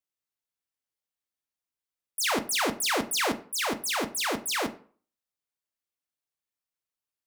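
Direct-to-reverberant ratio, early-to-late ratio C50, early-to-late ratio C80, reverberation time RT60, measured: 8.0 dB, 16.0 dB, 20.5 dB, 0.45 s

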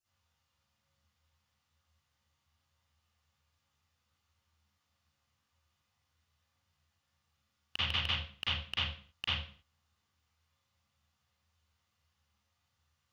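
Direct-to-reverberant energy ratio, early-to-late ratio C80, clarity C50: −14.5 dB, 2.0 dB, −6.0 dB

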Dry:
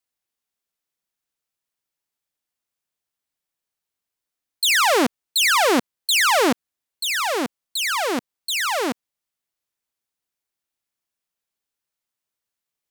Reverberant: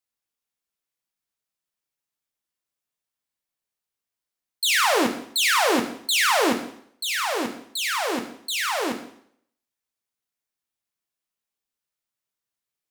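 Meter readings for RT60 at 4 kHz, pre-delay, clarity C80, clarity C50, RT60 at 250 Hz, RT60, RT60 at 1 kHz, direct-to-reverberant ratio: 0.60 s, 8 ms, 12.5 dB, 9.5 dB, 0.60 s, 0.65 s, 0.65 s, 4.0 dB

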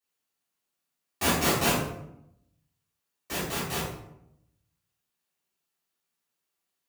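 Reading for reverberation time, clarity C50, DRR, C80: 0.80 s, 1.5 dB, −11.0 dB, 5.0 dB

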